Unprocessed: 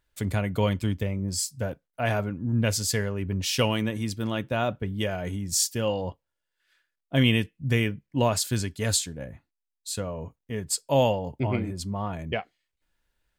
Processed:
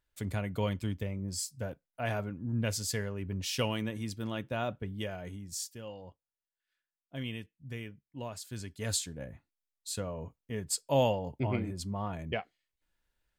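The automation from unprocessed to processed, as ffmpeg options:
ffmpeg -i in.wav -af "volume=5dB,afade=type=out:start_time=4.81:duration=1.01:silence=0.316228,afade=type=in:start_time=8.45:duration=0.73:silence=0.237137" out.wav

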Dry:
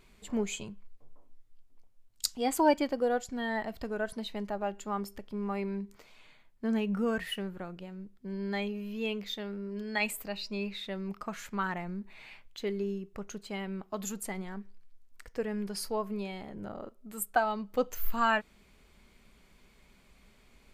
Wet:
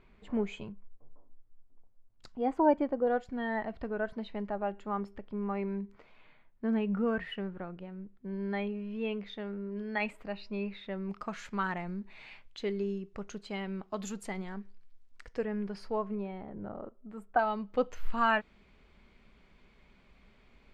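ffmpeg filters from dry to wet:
ffmpeg -i in.wav -af "asetnsamples=nb_out_samples=441:pad=0,asendcmd='0.72 lowpass f 1200;3.07 lowpass f 2200;11.09 lowpass f 5400;15.44 lowpass f 2400;16.15 lowpass f 1400;17.39 lowpass f 3400',lowpass=2200" out.wav

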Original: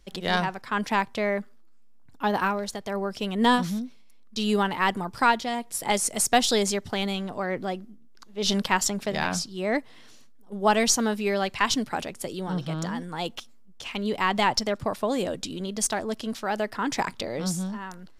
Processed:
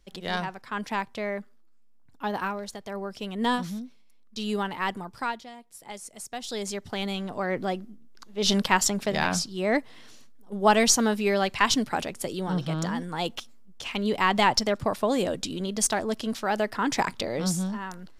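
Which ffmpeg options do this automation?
ffmpeg -i in.wav -af "volume=12.5dB,afade=type=out:start_time=4.92:duration=0.62:silence=0.281838,afade=type=in:start_time=6.39:duration=0.42:silence=0.281838,afade=type=in:start_time=6.81:duration=0.83:silence=0.473151" out.wav

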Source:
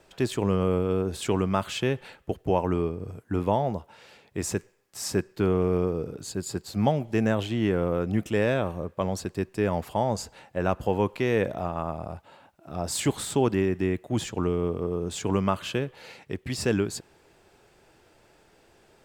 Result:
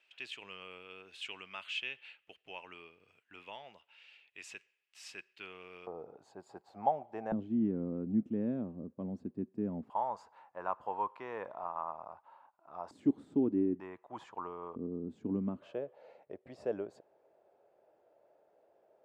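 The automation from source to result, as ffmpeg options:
ffmpeg -i in.wav -af "asetnsamples=nb_out_samples=441:pad=0,asendcmd='5.87 bandpass f 790;7.32 bandpass f 240;9.9 bandpass f 1000;12.91 bandpass f 280;13.8 bandpass f 990;14.76 bandpass f 250;15.62 bandpass f 600',bandpass=frequency=2700:width_type=q:width=4.4:csg=0" out.wav

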